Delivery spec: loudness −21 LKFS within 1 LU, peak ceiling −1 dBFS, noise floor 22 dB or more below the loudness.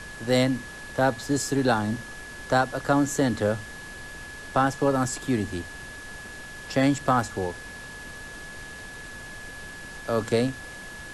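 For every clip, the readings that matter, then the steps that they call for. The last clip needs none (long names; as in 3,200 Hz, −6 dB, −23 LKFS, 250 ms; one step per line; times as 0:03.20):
interfering tone 1,700 Hz; level of the tone −40 dBFS; background noise floor −41 dBFS; target noise floor −48 dBFS; integrated loudness −25.5 LKFS; sample peak −10.5 dBFS; target loudness −21.0 LKFS
→ notch filter 1,700 Hz, Q 30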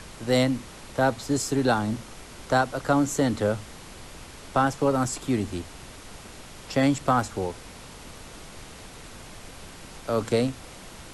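interfering tone none found; background noise floor −44 dBFS; target noise floor −48 dBFS
→ noise reduction from a noise print 6 dB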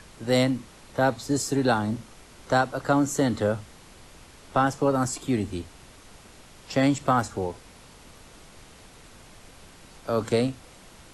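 background noise floor −50 dBFS; integrated loudness −26.0 LKFS; sample peak −10.5 dBFS; target loudness −21.0 LKFS
→ level +5 dB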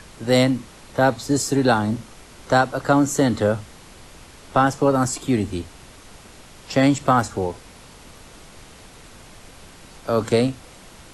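integrated loudness −21.0 LKFS; sample peak −5.5 dBFS; background noise floor −45 dBFS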